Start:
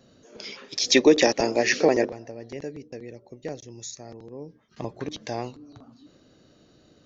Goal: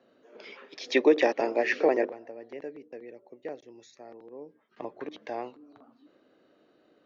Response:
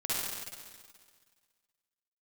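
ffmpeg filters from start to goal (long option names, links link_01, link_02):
-filter_complex "[0:a]acrossover=split=260 3000:gain=0.0631 1 0.0708[link_01][link_02][link_03];[link_01][link_02][link_03]amix=inputs=3:normalize=0,volume=-2.5dB"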